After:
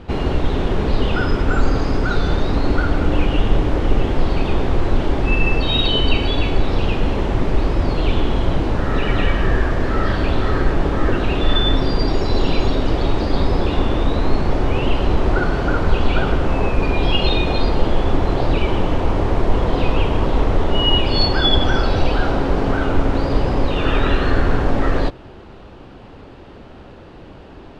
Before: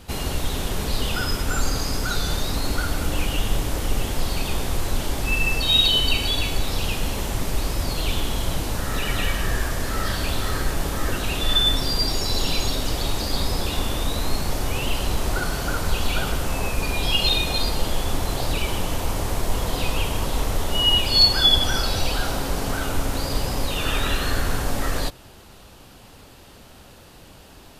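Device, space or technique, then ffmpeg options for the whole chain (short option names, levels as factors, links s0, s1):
phone in a pocket: -af "lowpass=3300,equalizer=f=350:t=o:w=0.89:g=5,highshelf=f=2500:g=-9,volume=2.24"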